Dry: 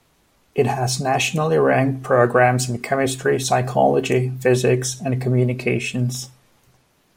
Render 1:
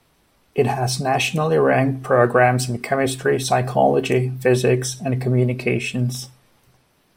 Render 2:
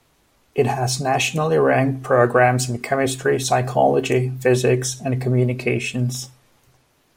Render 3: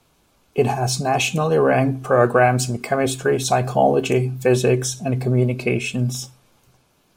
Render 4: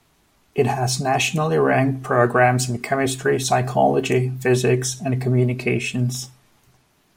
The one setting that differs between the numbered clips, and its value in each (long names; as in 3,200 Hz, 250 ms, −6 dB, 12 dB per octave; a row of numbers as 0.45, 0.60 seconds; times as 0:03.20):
notch filter, centre frequency: 6,800, 190, 1,900, 520 Hertz